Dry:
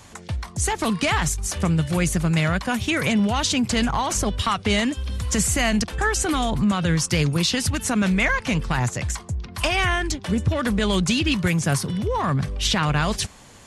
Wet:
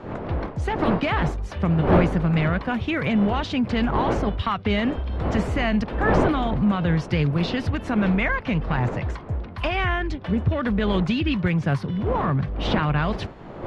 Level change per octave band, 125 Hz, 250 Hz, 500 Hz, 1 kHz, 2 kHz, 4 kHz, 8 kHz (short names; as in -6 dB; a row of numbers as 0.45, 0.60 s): +0.5 dB, +0.5 dB, +2.0 dB, 0.0 dB, -3.0 dB, -8.0 dB, under -25 dB